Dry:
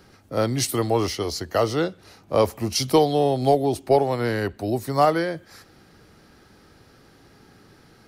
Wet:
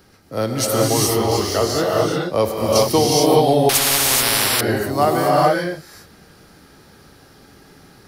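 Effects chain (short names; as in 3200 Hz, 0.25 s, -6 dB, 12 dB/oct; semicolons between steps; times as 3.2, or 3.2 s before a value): high shelf 9000 Hz +8 dB; non-linear reverb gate 0.45 s rising, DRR -4 dB; 3.69–4.61 spectral compressor 10:1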